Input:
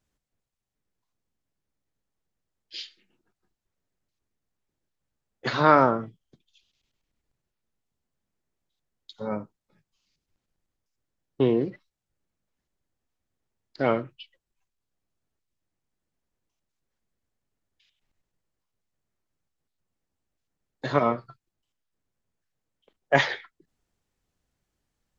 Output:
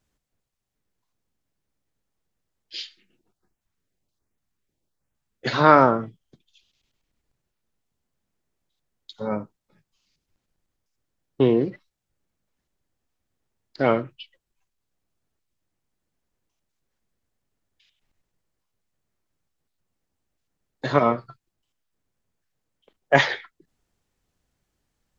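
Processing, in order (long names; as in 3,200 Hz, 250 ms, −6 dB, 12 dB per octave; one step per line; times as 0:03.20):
0:02.84–0:05.53: auto-filter notch saw up 1.3 Hz 340–5,000 Hz
level +3.5 dB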